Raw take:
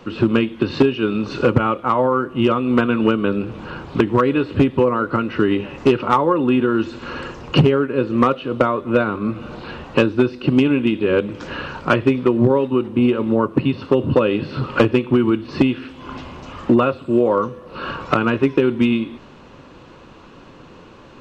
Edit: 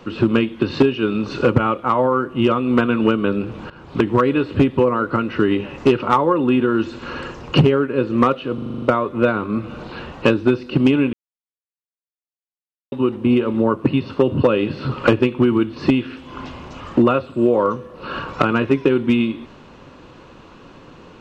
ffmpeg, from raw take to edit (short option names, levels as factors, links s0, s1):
-filter_complex "[0:a]asplit=11[s0][s1][s2][s3][s4][s5][s6][s7][s8][s9][s10];[s0]atrim=end=3.7,asetpts=PTS-STARTPTS,afade=t=out:st=3.696:d=0.004:c=hsin:silence=0.141254[s11];[s1]atrim=start=3.7:end=8.582,asetpts=PTS-STARTPTS,afade=t=in:d=0.36:silence=0.141254[s12];[s2]atrim=start=8.538:end=8.582[s13];[s3]atrim=start=8.538:end=8.582[s14];[s4]atrim=start=8.538:end=8.582[s15];[s5]atrim=start=8.538:end=8.582[s16];[s6]atrim=start=8.538:end=8.582[s17];[s7]atrim=start=8.538:end=8.582[s18];[s8]atrim=start=8.538:end=10.85,asetpts=PTS-STARTPTS,afade=t=out:st=2.308:d=0.004:c=hsin[s19];[s9]atrim=start=10.85:end=12.64,asetpts=PTS-STARTPTS,volume=0[s20];[s10]atrim=start=12.64,asetpts=PTS-STARTPTS,afade=t=in:d=0.004:c=hsin[s21];[s11][s12]concat=n=2:v=0:a=1[s22];[s22][s13]acrossfade=d=0.004:c1=hsin:c2=hsin[s23];[s23][s14]acrossfade=d=0.004:c1=hsin:c2=hsin[s24];[s24][s15]acrossfade=d=0.004:c1=hsin:c2=hsin[s25];[s25][s16]acrossfade=d=0.004:c1=hsin:c2=hsin[s26];[s26][s17]acrossfade=d=0.004:c1=hsin:c2=hsin[s27];[s27][s18]acrossfade=d=0.004:c1=hsin:c2=hsin[s28];[s19][s20][s21]concat=n=3:v=0:a=1[s29];[s28][s29]acrossfade=d=0.004:c1=hsin:c2=hsin"